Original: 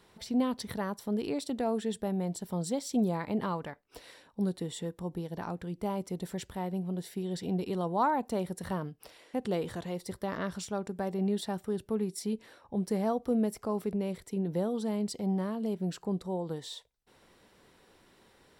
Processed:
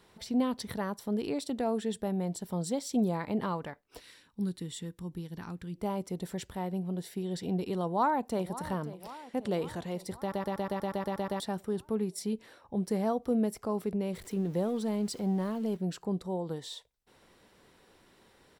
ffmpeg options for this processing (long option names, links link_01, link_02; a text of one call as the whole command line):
ffmpeg -i in.wav -filter_complex "[0:a]asettb=1/sr,asplit=3[link_01][link_02][link_03];[link_01]atrim=end=4.004[link_04];[link_02]atrim=start=4:end=5.75,asetpts=PTS-STARTPTS,afade=type=in:duration=0.004:curve=qsin,afade=type=out:start_time=1.746:duration=0.004:curve=qsin,equalizer=frequency=640:width_type=o:width=1.3:gain=-14.5[link_05];[link_03]atrim=start=5.746[link_06];[link_04][link_05]acrossfade=duration=0.004:curve1=hsin:curve2=qsin[link_07];[link_07][link_06]acrossfade=duration=0.004:curve1=qsin:curve2=hsin,asplit=2[link_08][link_09];[link_09]afade=type=in:start_time=7.84:duration=0.01,afade=type=out:start_time=8.57:duration=0.01,aecho=0:1:540|1080|1620|2160|2700|3240|3780:0.177828|0.115588|0.0751323|0.048836|0.0317434|0.0206332|0.0134116[link_10];[link_08][link_10]amix=inputs=2:normalize=0,asettb=1/sr,asplit=3[link_11][link_12][link_13];[link_11]atrim=end=14.134[link_14];[link_12]atrim=start=14.13:end=15.77,asetpts=PTS-STARTPTS,afade=type=in:duration=0.004:curve=qsin,afade=type=out:start_time=1.636:duration=0.004:curve=qsin,aeval=exprs='val(0)+0.5*0.00398*sgn(val(0))':channel_layout=same[link_15];[link_13]atrim=start=15.766[link_16];[link_14][link_15]acrossfade=duration=0.004:curve1=hsin:curve2=qsin[link_17];[link_17][link_16]acrossfade=duration=0.004:curve1=qsin:curve2=hsin,asplit=11[link_18][link_19][link_20][link_21][link_22][link_23][link_24][link_25][link_26][link_27][link_28];[link_18]atrim=end=10.322[link_29];[link_19]atrim=start=10.198:end=10.322[link_30];[link_20]atrim=start=10.198:end=10.322[link_31];[link_21]atrim=start=10.198:end=10.322[link_32];[link_22]atrim=start=10.198:end=10.322[link_33];[link_23]atrim=start=10.198:end=10.322[link_34];[link_24]atrim=start=10.198:end=10.322[link_35];[link_25]atrim=start=10.198:end=10.322[link_36];[link_26]atrim=start=10.198:end=10.322[link_37];[link_27]atrim=start=10.198:end=10.322[link_38];[link_28]atrim=start=11.398[link_39];[link_29][link_30]acrossfade=duration=0.004:curve1=hsin:curve2=hsin[link_40];[link_40][link_31]acrossfade=duration=0.004:curve1=hsin:curve2=hsin[link_41];[link_41][link_32]acrossfade=duration=0.004:curve1=hsin:curve2=hsin[link_42];[link_42][link_33]acrossfade=duration=0.004:curve1=hsin:curve2=hsin[link_43];[link_43][link_34]acrossfade=duration=0.004:curve1=hsin:curve2=hsin[link_44];[link_44][link_35]acrossfade=duration=0.004:curve1=hsin:curve2=hsin[link_45];[link_45][link_36]acrossfade=duration=0.004:curve1=hsin:curve2=hsin[link_46];[link_46][link_37]acrossfade=duration=0.004:curve1=hsin:curve2=hsin[link_47];[link_47][link_38]acrossfade=duration=0.004:curve1=hsin:curve2=hsin[link_48];[link_48][link_39]acrossfade=duration=0.004:curve1=hsin:curve2=hsin" out.wav